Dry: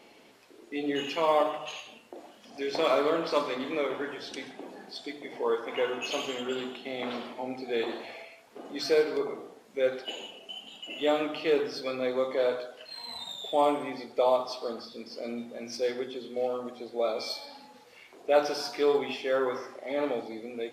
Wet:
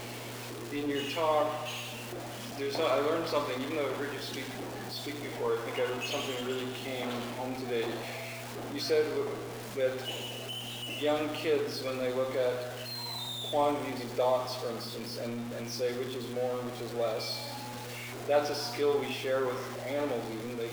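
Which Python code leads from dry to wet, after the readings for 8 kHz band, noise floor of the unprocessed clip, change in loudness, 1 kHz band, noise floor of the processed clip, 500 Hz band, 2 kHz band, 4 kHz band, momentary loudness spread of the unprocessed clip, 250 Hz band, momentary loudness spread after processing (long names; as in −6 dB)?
+4.5 dB, −55 dBFS, −2.5 dB, −2.5 dB, −41 dBFS, −2.5 dB, −1.0 dB, 0.0 dB, 16 LU, −1.0 dB, 10 LU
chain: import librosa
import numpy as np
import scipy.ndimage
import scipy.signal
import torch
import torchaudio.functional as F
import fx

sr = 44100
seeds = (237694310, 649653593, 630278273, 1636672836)

y = x + 0.5 * 10.0 ** (-33.0 / 20.0) * np.sign(x)
y = fx.dmg_buzz(y, sr, base_hz=120.0, harmonics=32, level_db=-42.0, tilt_db=-6, odd_only=False)
y = F.gain(torch.from_numpy(y), -4.5).numpy()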